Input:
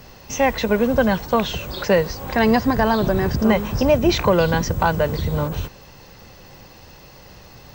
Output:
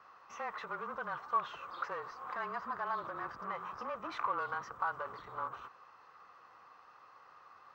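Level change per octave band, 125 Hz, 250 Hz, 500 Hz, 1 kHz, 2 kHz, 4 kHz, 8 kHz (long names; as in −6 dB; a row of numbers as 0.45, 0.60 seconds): −36.0 dB, −34.5 dB, −27.0 dB, −13.0 dB, −17.0 dB, −26.5 dB, below −30 dB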